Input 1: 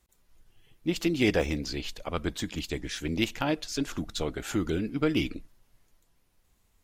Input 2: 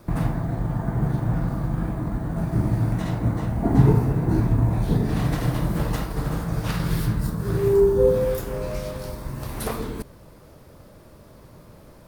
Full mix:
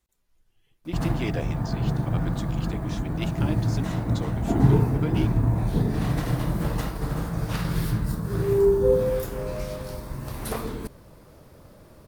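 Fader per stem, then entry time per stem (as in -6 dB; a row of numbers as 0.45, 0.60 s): -7.0, -2.0 dB; 0.00, 0.85 s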